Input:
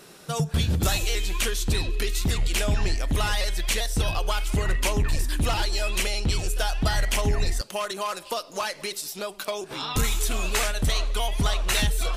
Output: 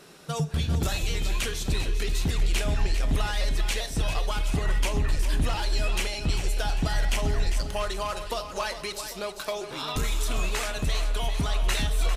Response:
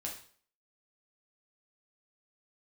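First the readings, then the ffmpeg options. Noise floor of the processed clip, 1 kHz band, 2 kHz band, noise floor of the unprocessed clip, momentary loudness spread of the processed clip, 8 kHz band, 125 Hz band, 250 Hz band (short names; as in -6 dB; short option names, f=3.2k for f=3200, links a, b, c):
-39 dBFS, -2.5 dB, -3.0 dB, -46 dBFS, 5 LU, -5.0 dB, -1.5 dB, -2.0 dB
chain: -filter_complex "[0:a]highshelf=f=9.1k:g=-7,alimiter=limit=-17.5dB:level=0:latency=1:release=142,aecho=1:1:398|796|1194|1592|1990|2388:0.316|0.161|0.0823|0.0419|0.0214|0.0109,asplit=2[a][b];[1:a]atrim=start_sample=2205[c];[b][c]afir=irnorm=-1:irlink=0,volume=-8dB[d];[a][d]amix=inputs=2:normalize=0,volume=-3.5dB"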